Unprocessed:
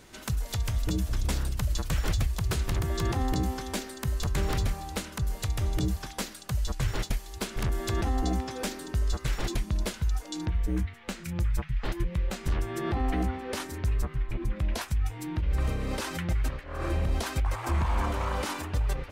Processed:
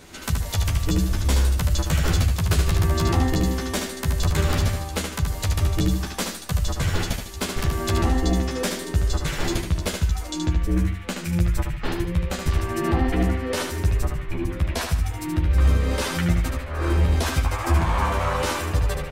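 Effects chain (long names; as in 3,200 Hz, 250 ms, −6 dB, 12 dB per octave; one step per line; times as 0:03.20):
double-tracking delay 12 ms −3 dB
on a send: repeating echo 75 ms, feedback 33%, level −5.5 dB
on the sum: level +5 dB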